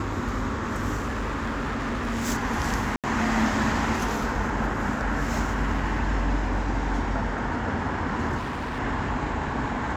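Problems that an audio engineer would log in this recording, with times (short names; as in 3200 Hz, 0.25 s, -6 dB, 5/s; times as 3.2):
0.95–2.29 clipped -24.5 dBFS
2.96–3.04 gap 77 ms
8.37–8.8 clipped -27.5 dBFS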